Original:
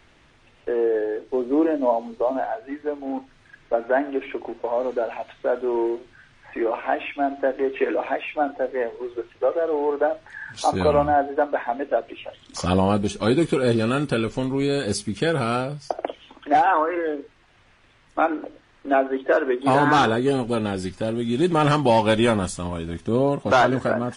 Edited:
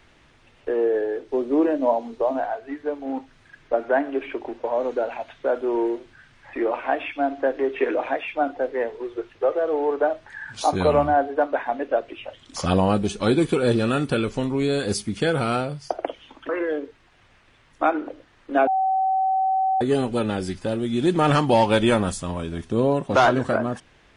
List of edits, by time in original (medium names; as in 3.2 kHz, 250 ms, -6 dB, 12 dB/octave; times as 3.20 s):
16.49–16.85 s: delete
19.03–20.17 s: bleep 763 Hz -18 dBFS